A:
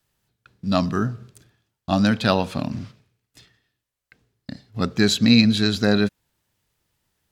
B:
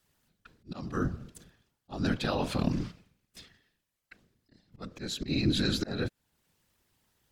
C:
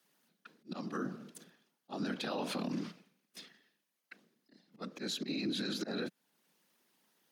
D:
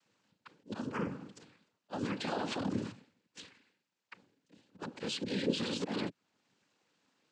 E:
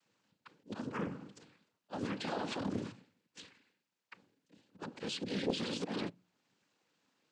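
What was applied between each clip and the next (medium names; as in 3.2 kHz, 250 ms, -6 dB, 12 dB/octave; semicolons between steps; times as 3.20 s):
slow attack 668 ms; peak limiter -17 dBFS, peak gain reduction 10 dB; whisper effect
steep high-pass 180 Hz 36 dB/octave; band-stop 7.6 kHz, Q 9.1; peak limiter -28.5 dBFS, peak gain reduction 11 dB
noise-vocoded speech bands 8; distance through air 56 m; trim +2.5 dB
on a send at -23.5 dB: reverberation RT60 0.35 s, pre-delay 6 ms; on the sum: loudspeaker Doppler distortion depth 0.56 ms; trim -2 dB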